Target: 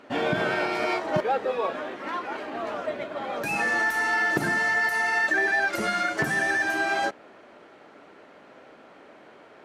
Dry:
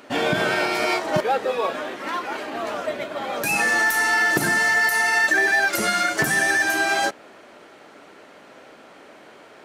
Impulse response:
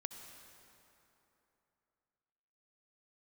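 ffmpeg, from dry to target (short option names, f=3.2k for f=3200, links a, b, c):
-af "lowpass=f=2.4k:p=1,volume=-3dB"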